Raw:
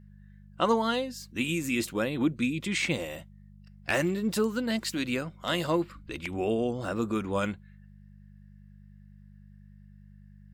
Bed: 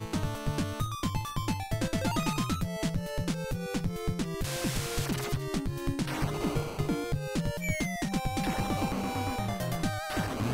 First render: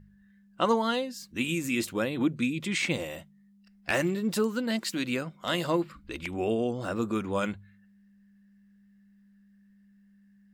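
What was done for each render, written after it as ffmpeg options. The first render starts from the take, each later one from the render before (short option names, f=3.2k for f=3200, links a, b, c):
-af "bandreject=f=50:t=h:w=4,bandreject=f=100:t=h:w=4,bandreject=f=150:t=h:w=4"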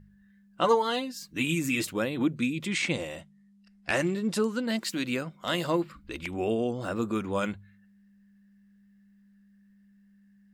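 -filter_complex "[0:a]asettb=1/sr,asplit=3[a][b][c];[a]atrim=end=0.634[d];[b]atrim=start=0.63:end=1.91,asetpts=PTS-STARTPTS,afade=t=in:d=0.004:c=qsin,afade=t=out:st=1.276:d=0.004:c=qsin,aecho=1:1:6.8:0.66,atrim=end_sample=56448[e];[c]atrim=start=1.906[f];[d][e]acrossfade=d=0.004:c1=hsin:c2=qsin[g];[g][f]acrossfade=d=0.004:c1=qsin:c2=hsin,asettb=1/sr,asplit=3[h][i][j];[h]atrim=end=2.674[k];[i]atrim=start=2.67:end=4.69,asetpts=PTS-STARTPTS,afade=t=in:d=0.004:c=qsin,afade=t=out:st=2.016:d=0.004:c=qsin,lowpass=f=11k:w=0.5412,lowpass=f=11k:w=1.3066[l];[j]atrim=start=4.686[m];[k][l]acrossfade=d=0.004:c1=hsin:c2=qsin[n];[n][m]acrossfade=d=0.004:c1=qsin:c2=hsin,asettb=1/sr,asplit=3[o][p][q];[o]atrim=end=6.754[r];[p]atrim=start=6.75:end=7.17,asetpts=PTS-STARTPTS,afade=t=in:d=0.004:c=qsin,afade=t=out:st=0.416:d=0.004:c=qsin,bandreject=f=5.7k:w=12[s];[q]atrim=start=7.166[t];[r][s]acrossfade=d=0.004:c1=hsin:c2=qsin[u];[u][t]acrossfade=d=0.004:c1=qsin:c2=hsin"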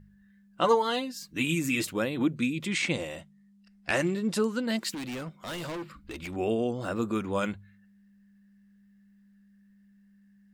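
-filter_complex "[0:a]asettb=1/sr,asplit=3[a][b][c];[a]atrim=end=4.944[d];[b]atrim=start=4.94:end=6.36,asetpts=PTS-STARTPTS,afade=t=in:d=0.004:c=qsin,afade=t=out:st=1.416:d=0.004:c=qsin,volume=34dB,asoftclip=hard,volume=-34dB[e];[c]atrim=start=6.356[f];[d][e]acrossfade=d=0.004:c1=hsin:c2=qsin[g];[g][f]acrossfade=d=0.004:c1=qsin:c2=hsin"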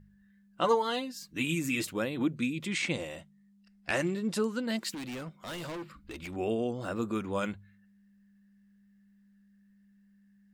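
-af "volume=-3dB"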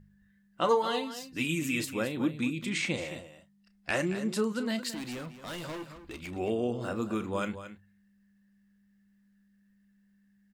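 -filter_complex "[0:a]asplit=2[a][b];[b]adelay=33,volume=-13dB[c];[a][c]amix=inputs=2:normalize=0,asplit=2[d][e];[e]aecho=0:1:222:0.251[f];[d][f]amix=inputs=2:normalize=0"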